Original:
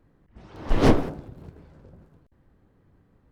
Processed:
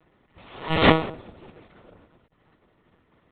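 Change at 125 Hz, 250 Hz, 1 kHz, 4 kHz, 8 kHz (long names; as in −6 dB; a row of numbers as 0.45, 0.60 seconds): −1.0 dB, −0.5 dB, +6.0 dB, +11.0 dB, can't be measured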